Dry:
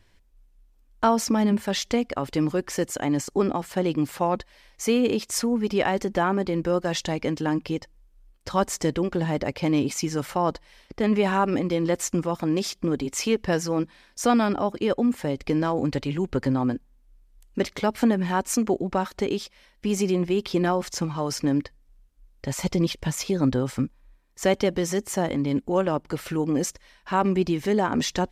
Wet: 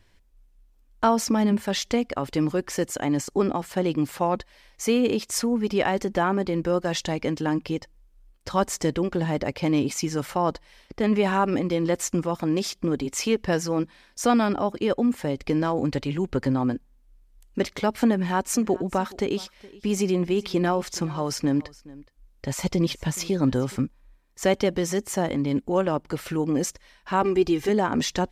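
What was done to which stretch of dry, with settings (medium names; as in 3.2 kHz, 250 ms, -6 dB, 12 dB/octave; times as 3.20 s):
18.13–23.76 s: delay 420 ms -21 dB
27.22–27.69 s: comb 2.5 ms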